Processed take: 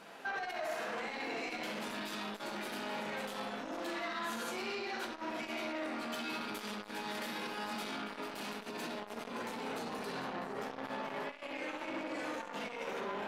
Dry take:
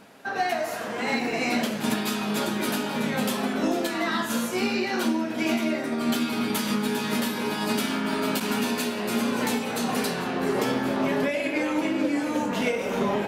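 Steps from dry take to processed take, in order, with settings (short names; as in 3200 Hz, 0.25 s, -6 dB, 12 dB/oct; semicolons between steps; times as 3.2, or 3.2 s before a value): 8.58–10.78 low shelf 390 Hz +8 dB; overdrive pedal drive 13 dB, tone 1300 Hz, clips at -9 dBFS; high shelf 3200 Hz +11 dB; analogue delay 67 ms, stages 2048, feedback 37%, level -3 dB; negative-ratio compressor -22 dBFS, ratio -0.5; notches 60/120/180/240/300 Hz; limiter -21.5 dBFS, peak gain reduction 11 dB; shoebox room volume 220 m³, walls furnished, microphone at 0.78 m; core saturation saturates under 1200 Hz; gain -9 dB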